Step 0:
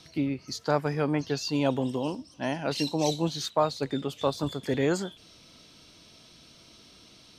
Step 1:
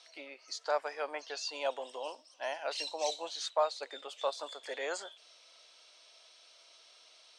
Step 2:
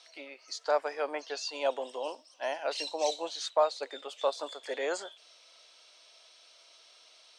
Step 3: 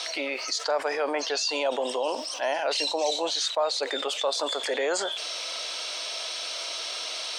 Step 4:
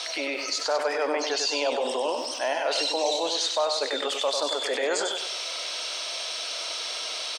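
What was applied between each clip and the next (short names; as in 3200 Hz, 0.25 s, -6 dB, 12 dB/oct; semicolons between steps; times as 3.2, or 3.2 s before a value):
elliptic band-pass 570–8900 Hz, stop band 60 dB; gain -4 dB
dynamic EQ 290 Hz, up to +7 dB, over -50 dBFS, Q 0.72; gain +1.5 dB
fast leveller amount 70%; gain -1.5 dB
feedback echo 97 ms, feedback 39%, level -6 dB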